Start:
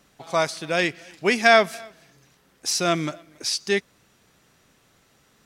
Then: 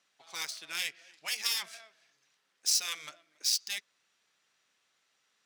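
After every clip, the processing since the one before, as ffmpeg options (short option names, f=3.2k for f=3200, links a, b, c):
-af "adynamicsmooth=sensitivity=3.5:basefreq=3.7k,afftfilt=real='re*lt(hypot(re,im),0.316)':imag='im*lt(hypot(re,im),0.316)':win_size=1024:overlap=0.75,aderivative,volume=1.5dB"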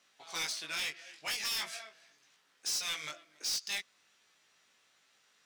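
-af "alimiter=limit=-20dB:level=0:latency=1:release=180,flanger=delay=17.5:depth=3:speed=0.43,asoftclip=type=tanh:threshold=-38.5dB,volume=8.5dB"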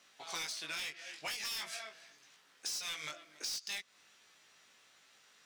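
-af "acompressor=threshold=-43dB:ratio=6,volume=4.5dB"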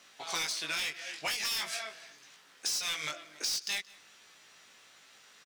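-af "aecho=1:1:176:0.0708,volume=6.5dB"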